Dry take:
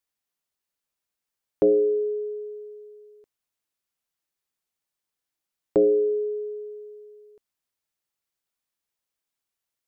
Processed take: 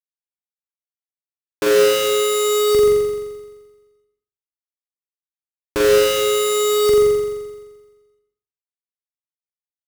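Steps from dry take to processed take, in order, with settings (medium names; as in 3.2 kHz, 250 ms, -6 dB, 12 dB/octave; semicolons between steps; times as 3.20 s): rattle on loud lows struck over -38 dBFS, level -33 dBFS; peak limiter -19.5 dBFS, peak gain reduction 7.5 dB; level rider gain up to 15 dB; Schmitt trigger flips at -24 dBFS; high-pass 40 Hz; flutter echo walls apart 7.4 m, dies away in 1.3 s; reverberation RT60 0.50 s, pre-delay 111 ms, DRR 6 dB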